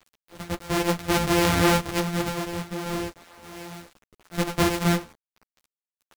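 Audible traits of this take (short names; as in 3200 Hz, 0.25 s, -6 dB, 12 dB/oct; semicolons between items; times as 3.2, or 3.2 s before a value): a buzz of ramps at a fixed pitch in blocks of 256 samples; random-step tremolo, depth 55%; a quantiser's noise floor 8-bit, dither none; a shimmering, thickened sound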